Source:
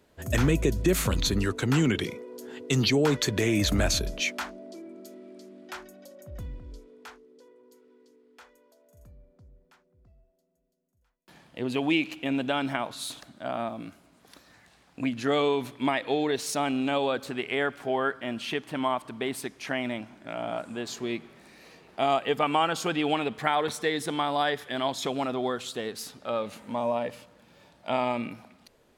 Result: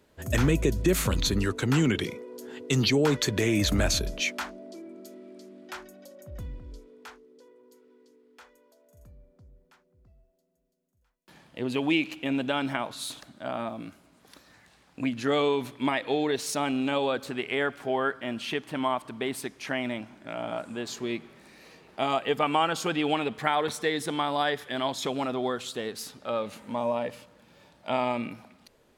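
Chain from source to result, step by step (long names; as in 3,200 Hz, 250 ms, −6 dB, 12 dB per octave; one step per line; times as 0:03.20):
notch filter 700 Hz, Q 23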